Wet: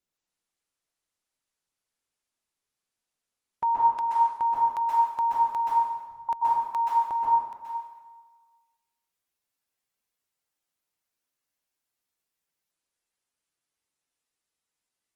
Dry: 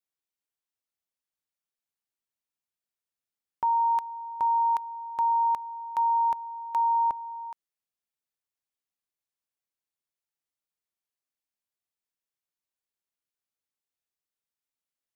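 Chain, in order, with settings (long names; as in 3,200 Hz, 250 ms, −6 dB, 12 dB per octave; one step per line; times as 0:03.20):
0:05.68–0:06.29: inverse Chebyshev low-pass filter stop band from 960 Hz, stop band 80 dB
dense smooth reverb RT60 1.3 s, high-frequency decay 0.8×, pre-delay 115 ms, DRR −6.5 dB
Opus 20 kbit/s 48,000 Hz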